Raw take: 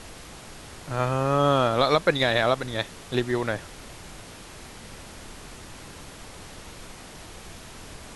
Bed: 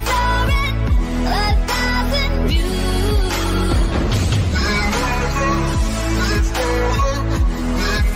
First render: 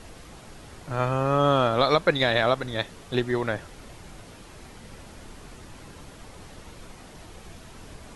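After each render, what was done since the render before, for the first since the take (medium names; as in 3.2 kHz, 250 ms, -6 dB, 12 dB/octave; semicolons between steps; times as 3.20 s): noise reduction 6 dB, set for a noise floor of -44 dBFS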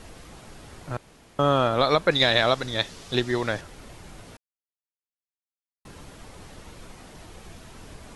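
0.97–1.39 s: room tone; 2.11–3.61 s: peaking EQ 5.1 kHz +9 dB 1.5 oct; 4.37–5.85 s: mute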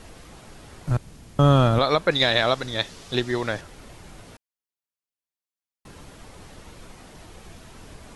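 0.87–1.79 s: tone controls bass +13 dB, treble +5 dB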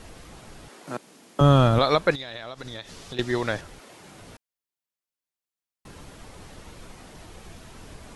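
0.68–1.41 s: high-pass 240 Hz 24 dB/octave; 2.15–3.19 s: compression 12:1, threshold -32 dBFS; 3.78–4.20 s: high-pass 390 Hz -> 110 Hz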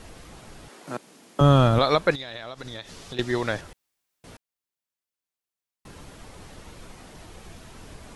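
3.73–4.24 s: room tone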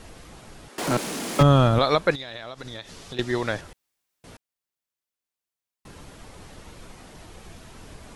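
0.78–1.43 s: power-law waveshaper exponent 0.5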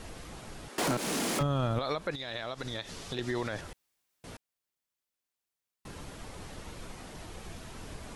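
compression 2.5:1, threshold -26 dBFS, peak gain reduction 9.5 dB; peak limiter -22 dBFS, peak gain reduction 9.5 dB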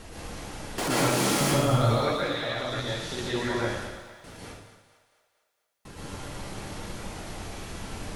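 two-band feedback delay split 560 Hz, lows 86 ms, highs 226 ms, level -13 dB; plate-style reverb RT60 0.93 s, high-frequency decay 0.9×, pre-delay 105 ms, DRR -6 dB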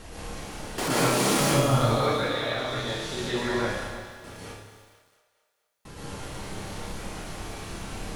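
flutter echo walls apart 5.1 m, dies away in 0.27 s; bit-crushed delay 327 ms, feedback 35%, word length 8-bit, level -13.5 dB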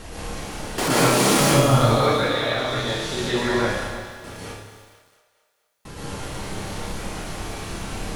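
trim +5.5 dB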